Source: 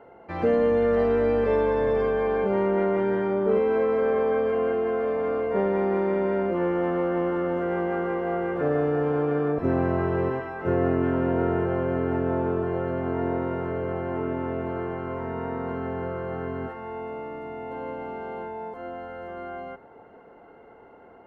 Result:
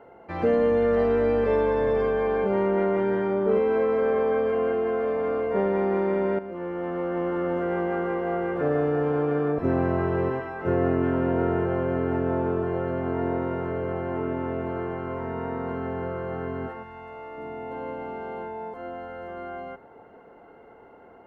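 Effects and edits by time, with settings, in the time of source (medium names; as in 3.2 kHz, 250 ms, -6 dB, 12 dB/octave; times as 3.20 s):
6.39–7.51 s: fade in, from -12.5 dB
16.82–17.37 s: peaking EQ 560 Hz -> 160 Hz -12.5 dB 1.9 oct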